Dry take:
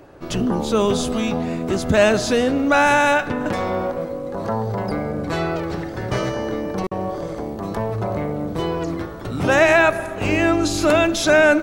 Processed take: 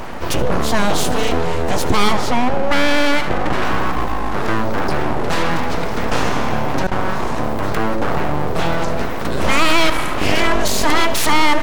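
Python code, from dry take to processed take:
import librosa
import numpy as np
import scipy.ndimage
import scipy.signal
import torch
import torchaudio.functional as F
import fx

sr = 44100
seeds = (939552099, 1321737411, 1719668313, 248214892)

p1 = fx.lowpass(x, sr, hz=1600.0, slope=6, at=(2.13, 3.62))
p2 = np.abs(p1)
p3 = p2 + fx.echo_single(p2, sr, ms=77, db=-18.0, dry=0)
p4 = fx.env_flatten(p3, sr, amount_pct=50)
y = p4 * librosa.db_to_amplitude(2.0)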